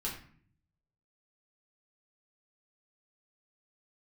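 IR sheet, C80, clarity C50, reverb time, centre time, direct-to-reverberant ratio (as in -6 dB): 10.0 dB, 6.5 dB, 0.50 s, 32 ms, -4.5 dB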